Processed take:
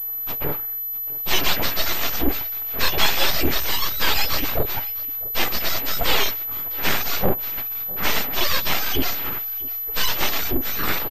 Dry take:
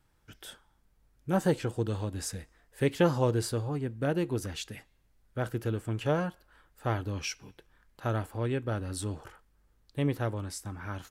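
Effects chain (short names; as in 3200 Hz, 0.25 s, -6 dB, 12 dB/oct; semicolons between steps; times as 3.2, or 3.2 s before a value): spectrum mirrored in octaves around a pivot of 930 Hz; in parallel at +1.5 dB: compressor, threshold -43 dBFS, peak gain reduction 21 dB; on the sum: overdrive pedal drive 21 dB, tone 3500 Hz, clips at -14 dBFS; on a send: echo 0.655 s -20 dB; on the sum: frequency shift +32 Hz; full-wave rectifier; pulse-width modulation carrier 12000 Hz; gain +8.5 dB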